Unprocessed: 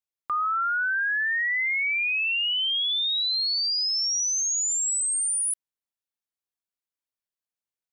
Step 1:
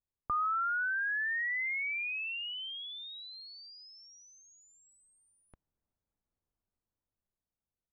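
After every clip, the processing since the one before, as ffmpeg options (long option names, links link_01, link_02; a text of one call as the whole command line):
ffmpeg -i in.wav -af "lowpass=1200,aemphasis=mode=reproduction:type=riaa,dynaudnorm=framelen=330:gausssize=9:maxgain=8dB,volume=-1.5dB" out.wav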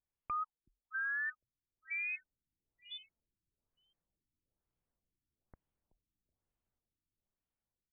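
ffmpeg -i in.wav -filter_complex "[0:a]asoftclip=type=tanh:threshold=-33.5dB,asplit=4[link_01][link_02][link_03][link_04];[link_02]adelay=376,afreqshift=-45,volume=-16dB[link_05];[link_03]adelay=752,afreqshift=-90,volume=-25.9dB[link_06];[link_04]adelay=1128,afreqshift=-135,volume=-35.8dB[link_07];[link_01][link_05][link_06][link_07]amix=inputs=4:normalize=0,afftfilt=real='re*lt(b*sr/1024,350*pow(3600/350,0.5+0.5*sin(2*PI*1.1*pts/sr)))':imag='im*lt(b*sr/1024,350*pow(3600/350,0.5+0.5*sin(2*PI*1.1*pts/sr)))':win_size=1024:overlap=0.75" out.wav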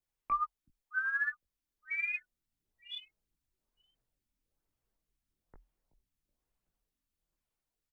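ffmpeg -i in.wav -filter_complex "[0:a]asplit=2[link_01][link_02];[link_02]adelay=19,volume=-5dB[link_03];[link_01][link_03]amix=inputs=2:normalize=0,aphaser=in_gain=1:out_gain=1:delay=3.4:decay=0.3:speed=1.5:type=triangular,afreqshift=-42,volume=2dB" out.wav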